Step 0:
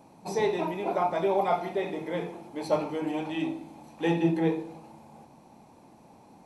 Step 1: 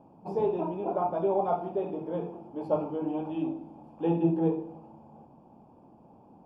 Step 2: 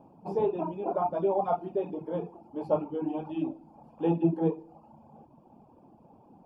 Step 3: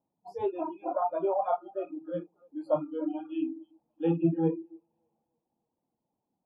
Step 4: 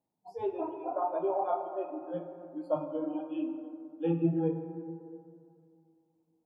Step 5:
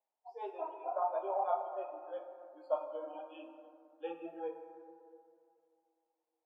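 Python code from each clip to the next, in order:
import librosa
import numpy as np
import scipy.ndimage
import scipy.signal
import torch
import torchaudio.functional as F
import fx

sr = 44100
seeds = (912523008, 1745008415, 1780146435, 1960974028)

y1 = np.convolve(x, np.full(22, 1.0 / 22))[:len(x)]
y2 = fx.dereverb_blind(y1, sr, rt60_s=0.77)
y2 = y2 * librosa.db_to_amplitude(1.0)
y3 = fx.echo_split(y2, sr, split_hz=400.0, low_ms=144, high_ms=294, feedback_pct=52, wet_db=-15.0)
y3 = fx.noise_reduce_blind(y3, sr, reduce_db=28)
y4 = fx.rev_plate(y3, sr, seeds[0], rt60_s=2.5, hf_ratio=0.35, predelay_ms=0, drr_db=5.5)
y4 = y4 * librosa.db_to_amplitude(-3.0)
y5 = fx.env_lowpass(y4, sr, base_hz=2400.0, full_db=-27.5)
y5 = scipy.signal.sosfilt(scipy.signal.butter(4, 540.0, 'highpass', fs=sr, output='sos'), y5)
y5 = y5 * librosa.db_to_amplitude(-1.5)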